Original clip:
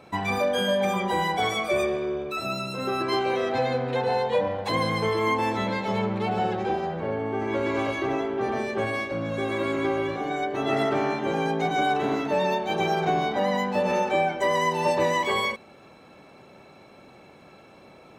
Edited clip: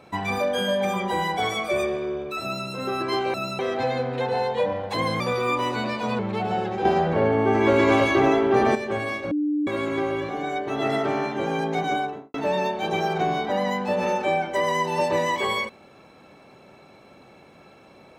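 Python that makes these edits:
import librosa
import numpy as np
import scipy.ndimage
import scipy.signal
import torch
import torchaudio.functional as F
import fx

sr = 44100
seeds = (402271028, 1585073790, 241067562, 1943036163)

y = fx.studio_fade_out(x, sr, start_s=11.73, length_s=0.48)
y = fx.edit(y, sr, fx.duplicate(start_s=2.42, length_s=0.25, to_s=3.34),
    fx.speed_span(start_s=4.95, length_s=1.11, speed=1.12),
    fx.clip_gain(start_s=6.72, length_s=1.9, db=8.0),
    fx.bleep(start_s=9.18, length_s=0.36, hz=297.0, db=-20.5), tone=tone)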